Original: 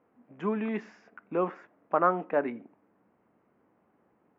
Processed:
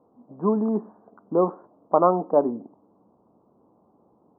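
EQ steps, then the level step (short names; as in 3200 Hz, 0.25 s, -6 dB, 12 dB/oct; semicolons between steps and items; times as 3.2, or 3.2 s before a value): steep low-pass 1100 Hz 48 dB/oct; +8.0 dB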